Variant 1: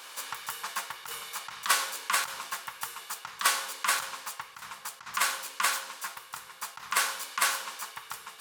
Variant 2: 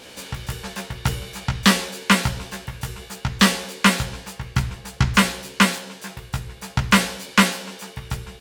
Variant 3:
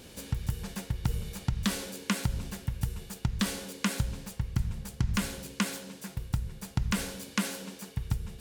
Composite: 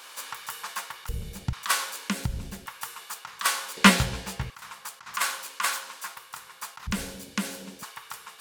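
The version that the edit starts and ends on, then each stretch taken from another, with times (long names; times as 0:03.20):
1
0:01.09–0:01.53: punch in from 3
0:02.09–0:02.66: punch in from 3
0:03.77–0:04.50: punch in from 2
0:06.87–0:07.83: punch in from 3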